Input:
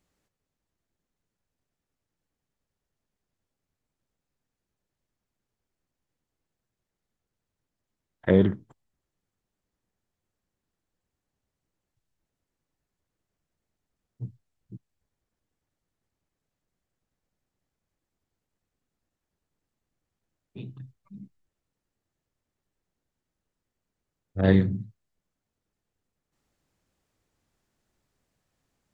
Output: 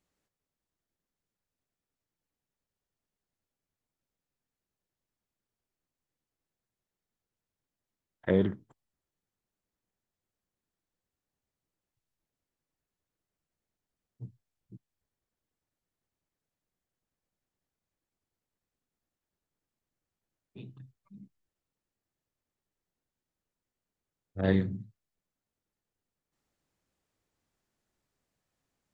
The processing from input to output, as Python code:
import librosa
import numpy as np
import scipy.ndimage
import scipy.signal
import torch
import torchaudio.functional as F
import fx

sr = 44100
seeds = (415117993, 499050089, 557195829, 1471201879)

y = fx.low_shelf(x, sr, hz=160.0, db=-4.0)
y = y * librosa.db_to_amplitude(-5.0)